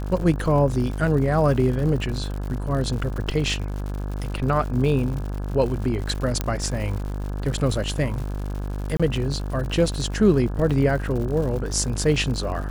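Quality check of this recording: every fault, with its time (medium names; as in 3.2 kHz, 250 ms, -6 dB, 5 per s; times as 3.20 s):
buzz 50 Hz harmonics 34 -28 dBFS
crackle 140 per s -31 dBFS
6.41 s: pop -9 dBFS
8.97–9.00 s: dropout 26 ms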